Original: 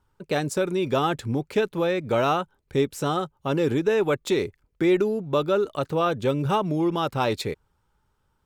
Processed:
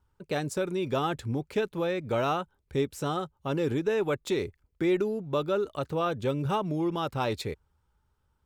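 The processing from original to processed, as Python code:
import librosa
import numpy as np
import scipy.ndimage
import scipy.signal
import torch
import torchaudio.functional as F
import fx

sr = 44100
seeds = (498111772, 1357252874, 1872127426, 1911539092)

y = fx.peak_eq(x, sr, hz=68.0, db=9.0, octaves=0.89)
y = y * librosa.db_to_amplitude(-5.5)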